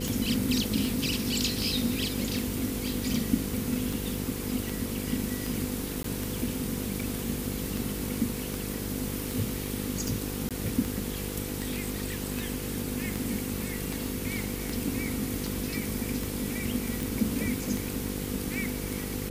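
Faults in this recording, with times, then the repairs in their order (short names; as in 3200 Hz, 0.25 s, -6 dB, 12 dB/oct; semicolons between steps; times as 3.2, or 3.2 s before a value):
buzz 50 Hz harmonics 10 -36 dBFS
tick 78 rpm
6.03–6.04 gap 13 ms
10.49–10.51 gap 17 ms
17.03 pop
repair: de-click; de-hum 50 Hz, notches 10; interpolate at 6.03, 13 ms; interpolate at 10.49, 17 ms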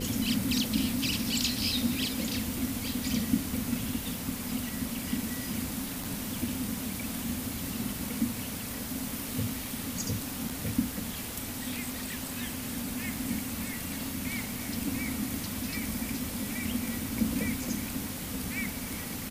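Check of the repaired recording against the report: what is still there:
none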